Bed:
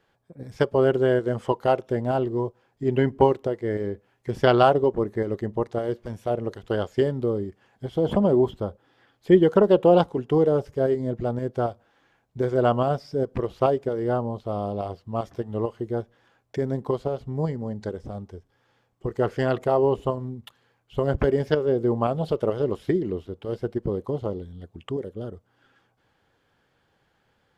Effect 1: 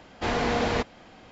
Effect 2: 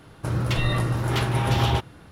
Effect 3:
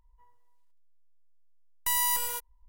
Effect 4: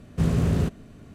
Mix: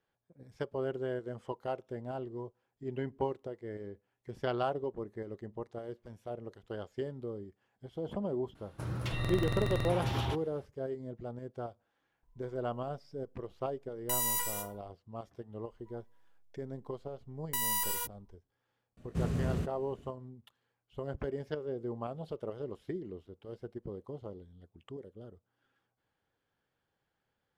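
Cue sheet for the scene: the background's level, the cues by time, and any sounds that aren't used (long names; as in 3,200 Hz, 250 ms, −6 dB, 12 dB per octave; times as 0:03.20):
bed −15.5 dB
0:08.55: mix in 2 −12 dB + buffer that repeats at 0:00.65, samples 2,048, times 14
0:12.23: mix in 3 −5.5 dB + feedback delay network reverb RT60 0.57 s, low-frequency decay 1.5×, high-frequency decay 0.45×, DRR 0 dB
0:15.67: mix in 3 −2 dB + brickwall limiter −17 dBFS
0:18.97: mix in 4 −10.5 dB
not used: 1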